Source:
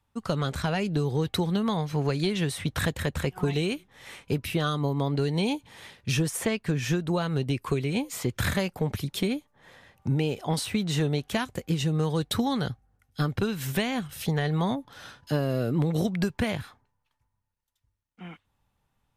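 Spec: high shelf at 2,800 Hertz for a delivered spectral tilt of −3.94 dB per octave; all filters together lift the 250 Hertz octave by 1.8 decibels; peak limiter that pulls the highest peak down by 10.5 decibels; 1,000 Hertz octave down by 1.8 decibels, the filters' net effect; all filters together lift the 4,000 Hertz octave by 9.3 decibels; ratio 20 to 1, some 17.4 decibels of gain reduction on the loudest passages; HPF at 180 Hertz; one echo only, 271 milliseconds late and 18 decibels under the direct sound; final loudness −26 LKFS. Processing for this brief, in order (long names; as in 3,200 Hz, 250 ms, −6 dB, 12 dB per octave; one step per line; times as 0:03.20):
high-pass filter 180 Hz
parametric band 250 Hz +5 dB
parametric band 1,000 Hz −4 dB
high-shelf EQ 2,800 Hz +6.5 dB
parametric band 4,000 Hz +6.5 dB
downward compressor 20 to 1, threshold −35 dBFS
brickwall limiter −30 dBFS
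single-tap delay 271 ms −18 dB
level +15 dB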